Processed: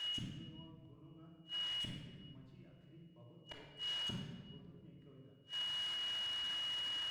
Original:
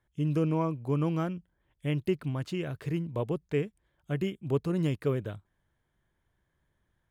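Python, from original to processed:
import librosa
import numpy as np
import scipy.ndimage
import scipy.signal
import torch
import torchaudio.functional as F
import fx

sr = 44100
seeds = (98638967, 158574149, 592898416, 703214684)

y = x + 0.5 * 10.0 ** (-34.5 / 20.0) * np.diff(np.sign(x), prepend=np.sign(x[:1]))
y = fx.highpass(y, sr, hz=85.0, slope=6)
y = fx.high_shelf(y, sr, hz=2500.0, db=-5.0)
y = fx.notch(y, sr, hz=370.0, q=12.0)
y = fx.rider(y, sr, range_db=10, speed_s=0.5)
y = y + 10.0 ** (-47.0 / 20.0) * np.sin(2.0 * np.pi * 2900.0 * np.arange(len(y)) / sr)
y = fx.gate_flip(y, sr, shuts_db=-35.0, range_db=-39)
y = fx.air_absorb(y, sr, metres=120.0)
y = fx.room_shoebox(y, sr, seeds[0], volume_m3=1600.0, walls='mixed', distance_m=2.9)
y = F.gain(torch.from_numpy(y), 4.0).numpy()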